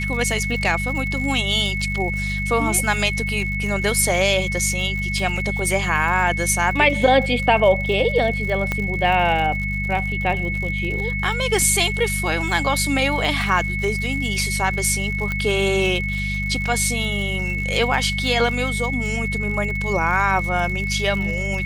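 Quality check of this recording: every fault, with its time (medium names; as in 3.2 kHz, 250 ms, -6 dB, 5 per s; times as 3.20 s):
crackle 78 per s -28 dBFS
hum 50 Hz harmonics 4 -26 dBFS
whine 2.2 kHz -25 dBFS
5.37 s: dropout 2.9 ms
8.72 s: pop -9 dBFS
15.32 s: pop -12 dBFS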